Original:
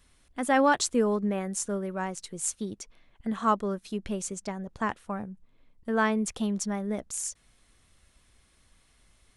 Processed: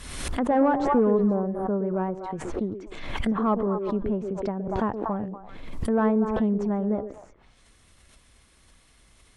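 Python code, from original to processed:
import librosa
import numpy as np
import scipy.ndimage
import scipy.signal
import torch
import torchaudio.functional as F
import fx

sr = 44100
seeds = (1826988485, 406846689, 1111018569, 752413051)

y = fx.cheby_harmonics(x, sr, harmonics=(5, 8), levels_db=(-16, -24), full_scale_db=-9.5)
y = fx.env_lowpass_down(y, sr, base_hz=900.0, full_db=-28.0)
y = fx.spec_repair(y, sr, seeds[0], start_s=1.09, length_s=0.66, low_hz=1700.0, high_hz=9400.0, source='both')
y = fx.echo_stepped(y, sr, ms=120, hz=370.0, octaves=1.4, feedback_pct=70, wet_db=-5.0)
y = fx.pre_swell(y, sr, db_per_s=46.0)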